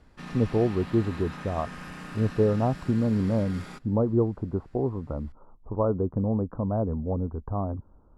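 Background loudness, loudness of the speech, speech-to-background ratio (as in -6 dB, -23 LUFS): -41.0 LUFS, -27.5 LUFS, 13.5 dB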